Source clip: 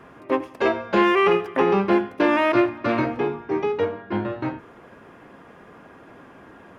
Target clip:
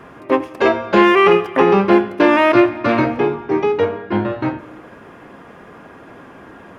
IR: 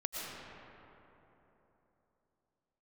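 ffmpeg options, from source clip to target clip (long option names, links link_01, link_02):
-filter_complex "[0:a]asplit=2[link_01][link_02];[1:a]atrim=start_sample=2205,afade=type=out:start_time=0.39:duration=0.01,atrim=end_sample=17640,adelay=29[link_03];[link_02][link_03]afir=irnorm=-1:irlink=0,volume=-20.5dB[link_04];[link_01][link_04]amix=inputs=2:normalize=0,volume=6.5dB"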